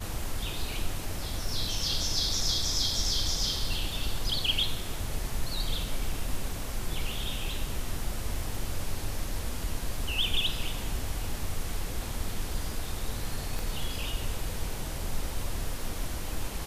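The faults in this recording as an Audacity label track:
13.590000	13.590000	click

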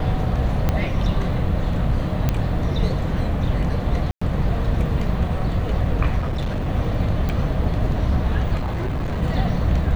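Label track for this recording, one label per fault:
0.690000	0.690000	click −7 dBFS
2.290000	2.290000	click −7 dBFS
4.110000	4.210000	drop-out 105 ms
6.180000	6.690000	clipping −20 dBFS
7.290000	7.290000	click −13 dBFS
8.560000	9.230000	clipping −20.5 dBFS

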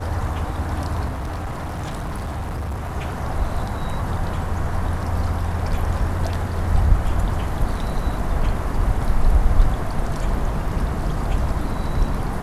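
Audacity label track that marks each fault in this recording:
1.080000	2.940000	clipping −23.5 dBFS

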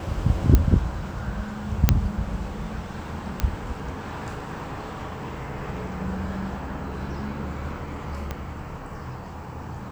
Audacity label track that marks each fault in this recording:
0.550000	0.550000	click −5 dBFS
1.890000	1.890000	click −1 dBFS
3.400000	3.400000	click −9 dBFS
8.310000	8.310000	click −15 dBFS

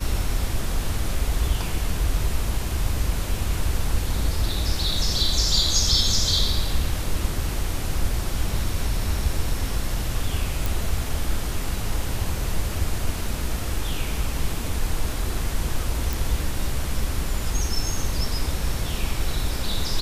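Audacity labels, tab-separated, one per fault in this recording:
10.660000	10.660000	click
16.130000	16.130000	click

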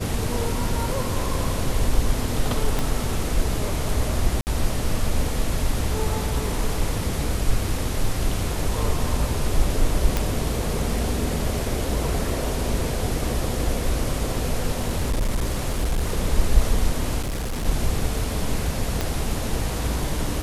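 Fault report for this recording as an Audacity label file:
2.790000	2.790000	click
4.410000	4.470000	drop-out 59 ms
10.170000	10.170000	click
14.800000	16.170000	clipping −18 dBFS
17.220000	17.660000	clipping −23.5 dBFS
19.010000	19.010000	click −9 dBFS

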